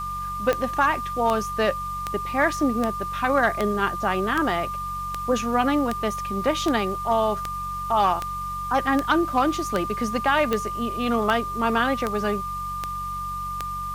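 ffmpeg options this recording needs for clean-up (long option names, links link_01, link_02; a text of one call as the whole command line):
ffmpeg -i in.wav -af "adeclick=threshold=4,bandreject=frequency=46.7:width_type=h:width=4,bandreject=frequency=93.4:width_type=h:width=4,bandreject=frequency=140.1:width_type=h:width=4,bandreject=frequency=186.8:width_type=h:width=4,bandreject=frequency=1200:width=30,afwtdn=0.004" out.wav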